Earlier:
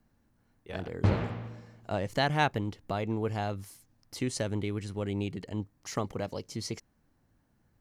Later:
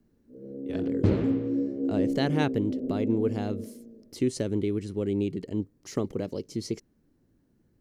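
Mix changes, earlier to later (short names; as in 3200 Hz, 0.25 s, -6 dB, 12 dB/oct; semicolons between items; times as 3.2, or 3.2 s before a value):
first sound: unmuted; master: add EQ curve 100 Hz 0 dB, 380 Hz +9 dB, 790 Hz -7 dB, 1700 Hz -5 dB, 4200 Hz -2 dB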